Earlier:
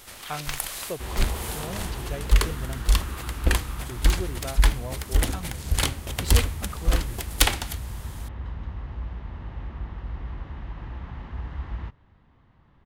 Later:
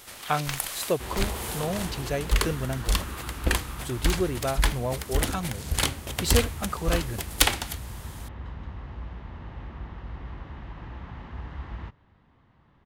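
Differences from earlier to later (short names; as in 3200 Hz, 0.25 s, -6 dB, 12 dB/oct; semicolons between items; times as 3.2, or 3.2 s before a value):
speech +8.0 dB; master: add low shelf 62 Hz -9 dB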